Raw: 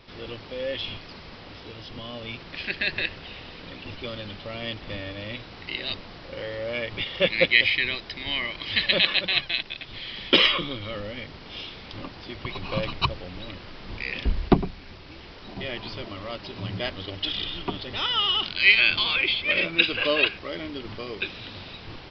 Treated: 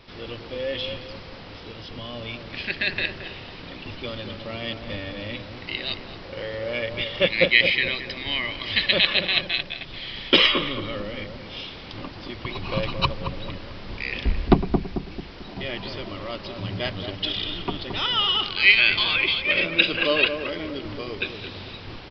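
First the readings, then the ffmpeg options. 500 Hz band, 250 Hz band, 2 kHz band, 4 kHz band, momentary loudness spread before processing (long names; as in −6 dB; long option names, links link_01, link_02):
+2.5 dB, +3.0 dB, +1.5 dB, +1.5 dB, 21 LU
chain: -filter_complex "[0:a]asplit=2[link_01][link_02];[link_02]adelay=221,lowpass=frequency=950:poles=1,volume=-5.5dB,asplit=2[link_03][link_04];[link_04]adelay=221,lowpass=frequency=950:poles=1,volume=0.46,asplit=2[link_05][link_06];[link_06]adelay=221,lowpass=frequency=950:poles=1,volume=0.46,asplit=2[link_07][link_08];[link_08]adelay=221,lowpass=frequency=950:poles=1,volume=0.46,asplit=2[link_09][link_10];[link_10]adelay=221,lowpass=frequency=950:poles=1,volume=0.46,asplit=2[link_11][link_12];[link_12]adelay=221,lowpass=frequency=950:poles=1,volume=0.46[link_13];[link_01][link_03][link_05][link_07][link_09][link_11][link_13]amix=inputs=7:normalize=0,volume=1.5dB"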